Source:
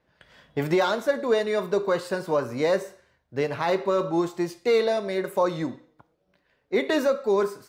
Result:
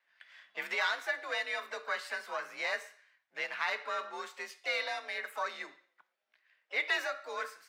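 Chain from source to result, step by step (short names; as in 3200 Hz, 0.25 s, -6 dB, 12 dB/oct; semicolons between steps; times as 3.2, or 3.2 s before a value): tilt -2.5 dB/oct; frequency shift +47 Hz; harmoniser +5 st -15 dB; resonant high-pass 1900 Hz, resonance Q 1.6; gain -1 dB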